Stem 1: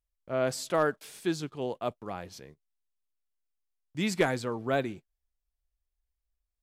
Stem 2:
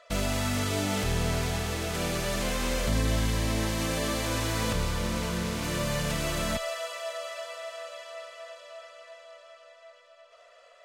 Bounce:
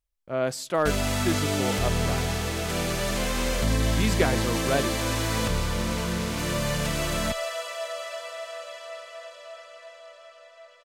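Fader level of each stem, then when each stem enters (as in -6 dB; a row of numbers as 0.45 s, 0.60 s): +2.0 dB, +2.5 dB; 0.00 s, 0.75 s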